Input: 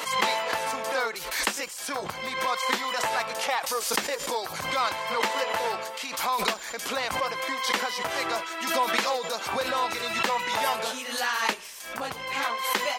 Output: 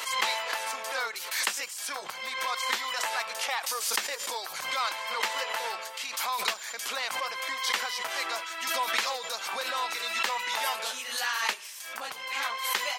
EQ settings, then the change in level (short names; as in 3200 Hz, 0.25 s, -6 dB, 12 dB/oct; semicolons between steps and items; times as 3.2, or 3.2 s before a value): HPF 1400 Hz 6 dB/oct; 0.0 dB